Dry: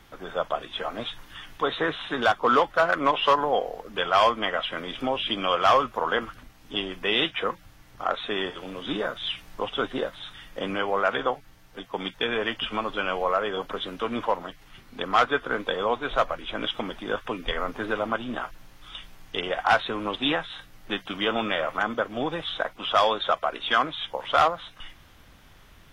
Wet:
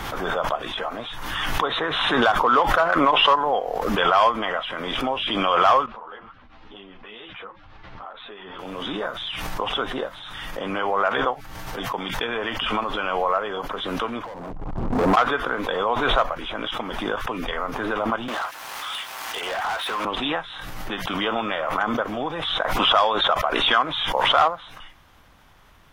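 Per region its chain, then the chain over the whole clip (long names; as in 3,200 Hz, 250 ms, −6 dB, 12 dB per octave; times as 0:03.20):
0:05.86–0:08.59: low-pass filter 4,000 Hz 24 dB per octave + downward compressor 2.5 to 1, threshold −39 dBFS + string-ensemble chorus
0:14.24–0:15.17: Gaussian smoothing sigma 11 samples + downward compressor 5 to 1, threshold −43 dBFS + leveller curve on the samples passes 5
0:18.28–0:20.05: high-pass filter 690 Hz + downward compressor 4 to 1, threshold −37 dBFS + leveller curve on the samples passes 5
whole clip: parametric band 960 Hz +6.5 dB 1.3 octaves; background raised ahead of every attack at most 26 dB per second; level −3 dB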